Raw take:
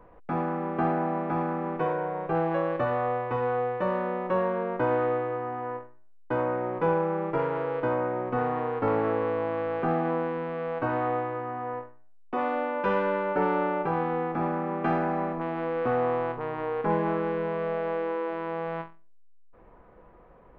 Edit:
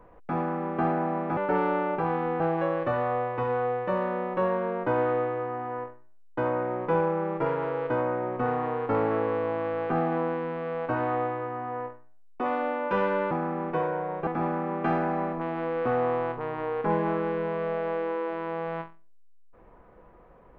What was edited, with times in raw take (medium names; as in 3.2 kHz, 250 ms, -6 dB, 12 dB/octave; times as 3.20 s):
1.37–2.33 s: swap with 13.24–14.27 s